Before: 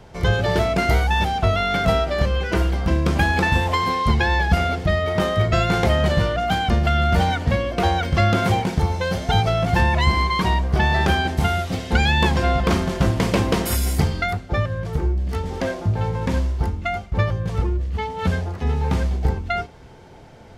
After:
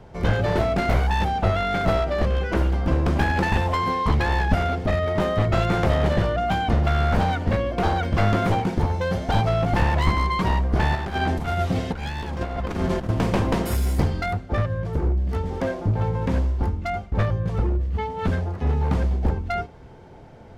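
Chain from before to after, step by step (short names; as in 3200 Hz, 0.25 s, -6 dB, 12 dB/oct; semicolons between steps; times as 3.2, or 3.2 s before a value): one-sided fold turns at -17 dBFS; high shelf 2100 Hz -9.5 dB; 10.95–13.09 negative-ratio compressor -24 dBFS, ratio -0.5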